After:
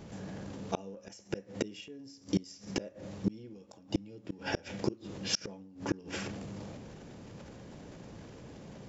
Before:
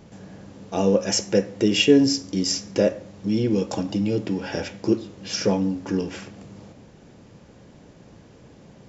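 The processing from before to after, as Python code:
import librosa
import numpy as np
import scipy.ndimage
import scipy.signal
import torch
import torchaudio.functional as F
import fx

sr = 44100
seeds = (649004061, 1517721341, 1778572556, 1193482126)

y = fx.gate_flip(x, sr, shuts_db=-16.0, range_db=-33)
y = fx.transient(y, sr, attack_db=0, sustain_db=8)
y = y * librosa.db_to_amplitude(-1.0)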